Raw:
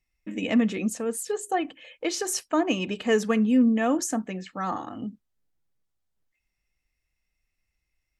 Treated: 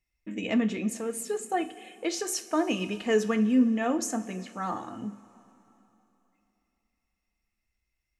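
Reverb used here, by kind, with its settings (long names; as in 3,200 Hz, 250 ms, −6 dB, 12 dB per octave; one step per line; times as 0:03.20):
coupled-rooms reverb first 0.31 s, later 3.3 s, from −17 dB, DRR 7.5 dB
level −3.5 dB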